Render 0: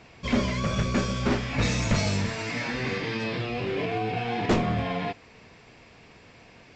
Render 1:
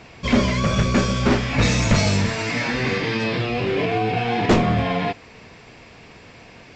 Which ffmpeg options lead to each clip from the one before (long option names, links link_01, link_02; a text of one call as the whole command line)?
ffmpeg -i in.wav -af "acontrast=85" out.wav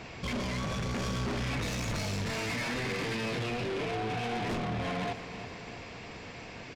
ffmpeg -i in.wav -af "alimiter=limit=-20dB:level=0:latency=1:release=13,asoftclip=type=tanh:threshold=-31dB,aecho=1:1:323|646|969|1292|1615|1938:0.224|0.13|0.0753|0.0437|0.0253|0.0147" out.wav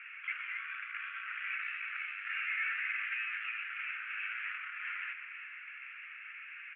ffmpeg -i in.wav -af "flanger=delay=8.4:depth=3.8:regen=69:speed=0.64:shape=sinusoidal,asuperpass=centerf=1900:order=12:qfactor=1.3,volume=7dB" out.wav